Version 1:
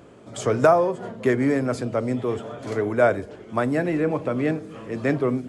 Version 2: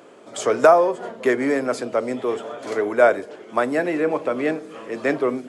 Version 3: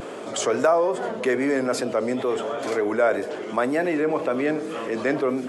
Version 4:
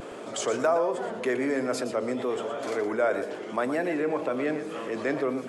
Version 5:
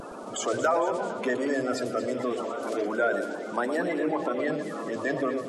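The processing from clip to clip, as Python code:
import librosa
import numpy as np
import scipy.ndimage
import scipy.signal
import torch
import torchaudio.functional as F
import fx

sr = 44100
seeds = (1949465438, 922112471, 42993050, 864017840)

y1 = scipy.signal.sosfilt(scipy.signal.butter(2, 350.0, 'highpass', fs=sr, output='sos'), x)
y1 = y1 * 10.0 ** (4.0 / 20.0)
y2 = fx.wow_flutter(y1, sr, seeds[0], rate_hz=2.1, depth_cents=46.0)
y2 = fx.env_flatten(y2, sr, amount_pct=50)
y2 = y2 * 10.0 ** (-7.0 / 20.0)
y3 = y2 + 10.0 ** (-10.5 / 20.0) * np.pad(y2, (int(118 * sr / 1000.0), 0))[:len(y2)]
y3 = y3 * 10.0 ** (-5.0 / 20.0)
y4 = fx.spec_quant(y3, sr, step_db=30)
y4 = fx.echo_alternate(y4, sr, ms=114, hz=1000.0, feedback_pct=71, wet_db=-9.0)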